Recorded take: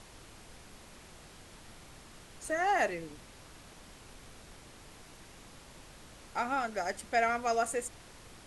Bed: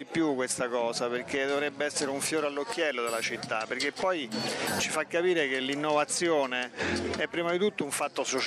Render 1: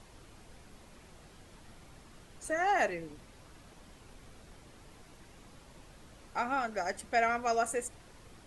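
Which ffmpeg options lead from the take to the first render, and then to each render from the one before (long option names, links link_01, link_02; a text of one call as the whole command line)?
ffmpeg -i in.wav -af "afftdn=noise_reduction=6:noise_floor=-54" out.wav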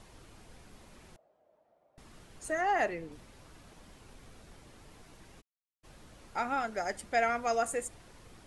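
ffmpeg -i in.wav -filter_complex "[0:a]asettb=1/sr,asplit=3[link_01][link_02][link_03];[link_01]atrim=end=1.164[link_04];[link_02]atrim=start=1.16:end=1.98,asetpts=PTS-STARTPTS,afade=type=in:duration=0.004:curve=qsin,afade=type=out:start_time=0.816:duration=0.004:curve=qsin,bandpass=frequency=620:width_type=q:width=6.2[link_05];[link_03]atrim=start=1.976[link_06];[link_04][link_05]acrossfade=duration=0.004:curve1=hsin:curve2=qsin[link_07];[link_07][link_06]acrossfade=duration=0.004:curve1=qsin:curve2=hsin,asettb=1/sr,asplit=3[link_08][link_09][link_10];[link_08]atrim=end=2.614[link_11];[link_09]atrim=start=2.61:end=3.12,asetpts=PTS-STARTPTS,afade=type=in:duration=0.004:curve=qsin,afade=type=out:start_time=0.506:duration=0.004:curve=qsin,highshelf=frequency=3900:gain=-6.5[link_12];[link_10]atrim=start=3.116[link_13];[link_11][link_12]acrossfade=duration=0.004:curve1=hsin:curve2=qsin[link_14];[link_14][link_13]acrossfade=duration=0.004:curve1=qsin:curve2=hsin,asplit=3[link_15][link_16][link_17];[link_15]afade=type=out:start_time=5.4:duration=0.02[link_18];[link_16]acrusher=bits=4:dc=4:mix=0:aa=0.000001,afade=type=in:start_time=5.4:duration=0.02,afade=type=out:start_time=5.83:duration=0.02[link_19];[link_17]afade=type=in:start_time=5.83:duration=0.02[link_20];[link_18][link_19][link_20]amix=inputs=3:normalize=0" out.wav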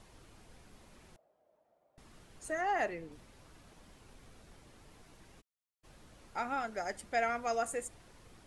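ffmpeg -i in.wav -af "volume=-3.5dB" out.wav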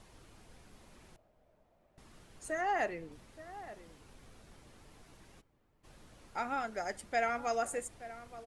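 ffmpeg -i in.wav -filter_complex "[0:a]asplit=2[link_01][link_02];[link_02]adelay=874.6,volume=-14dB,highshelf=frequency=4000:gain=-19.7[link_03];[link_01][link_03]amix=inputs=2:normalize=0" out.wav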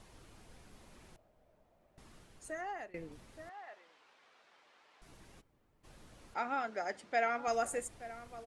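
ffmpeg -i in.wav -filter_complex "[0:a]asettb=1/sr,asplit=3[link_01][link_02][link_03];[link_01]atrim=end=3.494[link_04];[link_02]atrim=start=3.49:end=5.02,asetpts=PTS-STARTPTS,afade=type=in:duration=0.004:curve=qsin,afade=type=out:start_time=1.526:duration=0.004:curve=qsin,highpass=780,lowpass=3700[link_05];[link_03]atrim=start=5.016[link_06];[link_04][link_05]acrossfade=duration=0.004:curve1=hsin:curve2=qsin[link_07];[link_07][link_06]acrossfade=duration=0.004:curve1=qsin:curve2=hsin,asettb=1/sr,asplit=3[link_08][link_09][link_10];[link_08]atrim=end=6.344[link_11];[link_09]atrim=start=6.34:end=7.48,asetpts=PTS-STARTPTS,afade=type=in:duration=0.004:curve=qsin,afade=type=out:start_time=1.136:duration=0.004:curve=qsin,highpass=210,lowpass=5200[link_12];[link_10]atrim=start=7.476[link_13];[link_11][link_12]acrossfade=duration=0.004:curve1=hsin:curve2=qsin[link_14];[link_14][link_13]acrossfade=duration=0.004:curve1=qsin:curve2=hsin,asplit=2[link_15][link_16];[link_15]atrim=end=2.94,asetpts=PTS-STARTPTS,afade=type=out:start_time=2.08:duration=0.86:silence=0.0891251[link_17];[link_16]atrim=start=2.94,asetpts=PTS-STARTPTS,afade=type=in:duration=0.004:curve=hsin:silence=0.0891251[link_18];[link_17][link_18]concat=n=2:v=0:a=1" out.wav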